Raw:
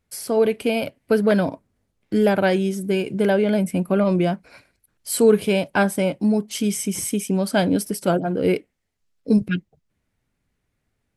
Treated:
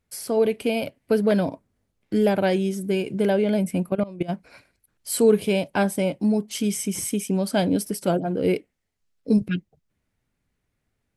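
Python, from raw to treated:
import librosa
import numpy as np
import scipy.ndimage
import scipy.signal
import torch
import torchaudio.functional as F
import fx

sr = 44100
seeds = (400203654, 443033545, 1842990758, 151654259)

y = fx.dynamic_eq(x, sr, hz=1400.0, q=1.7, threshold_db=-37.0, ratio=4.0, max_db=-5)
y = fx.level_steps(y, sr, step_db=18, at=(3.88, 4.28), fade=0.02)
y = y * 10.0 ** (-2.0 / 20.0)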